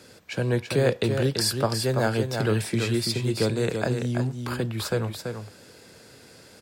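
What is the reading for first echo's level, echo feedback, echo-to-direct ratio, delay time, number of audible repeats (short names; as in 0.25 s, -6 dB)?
-6.0 dB, no steady repeat, -6.0 dB, 0.334 s, 1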